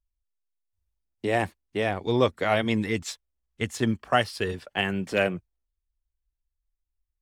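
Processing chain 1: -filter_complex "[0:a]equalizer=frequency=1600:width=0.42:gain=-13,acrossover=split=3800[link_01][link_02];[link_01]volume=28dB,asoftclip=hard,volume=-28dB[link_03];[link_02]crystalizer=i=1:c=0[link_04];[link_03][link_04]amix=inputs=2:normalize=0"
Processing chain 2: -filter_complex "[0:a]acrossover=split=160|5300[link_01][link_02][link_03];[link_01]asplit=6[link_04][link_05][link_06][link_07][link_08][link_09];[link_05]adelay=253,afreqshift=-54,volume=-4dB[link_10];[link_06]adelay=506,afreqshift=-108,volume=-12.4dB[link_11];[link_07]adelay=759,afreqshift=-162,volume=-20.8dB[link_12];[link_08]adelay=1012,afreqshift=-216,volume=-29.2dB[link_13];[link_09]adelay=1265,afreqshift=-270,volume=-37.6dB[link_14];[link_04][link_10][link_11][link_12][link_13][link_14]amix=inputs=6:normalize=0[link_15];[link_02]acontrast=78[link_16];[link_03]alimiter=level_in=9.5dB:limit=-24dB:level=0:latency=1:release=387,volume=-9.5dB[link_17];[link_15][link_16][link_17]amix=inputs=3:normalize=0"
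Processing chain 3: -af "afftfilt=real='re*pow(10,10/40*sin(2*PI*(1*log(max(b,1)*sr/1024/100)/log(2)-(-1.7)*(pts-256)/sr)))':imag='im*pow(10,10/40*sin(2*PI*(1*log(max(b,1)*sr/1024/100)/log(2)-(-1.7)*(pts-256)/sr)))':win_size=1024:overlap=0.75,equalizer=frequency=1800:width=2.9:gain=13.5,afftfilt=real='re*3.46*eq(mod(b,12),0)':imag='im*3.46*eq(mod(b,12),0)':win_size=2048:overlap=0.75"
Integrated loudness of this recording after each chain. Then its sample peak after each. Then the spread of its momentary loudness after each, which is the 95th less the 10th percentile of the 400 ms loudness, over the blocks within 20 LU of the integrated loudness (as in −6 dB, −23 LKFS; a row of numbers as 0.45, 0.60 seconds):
−35.0, −21.0, −23.0 LKFS; −21.0, −4.0, −4.5 dBFS; 6, 10, 11 LU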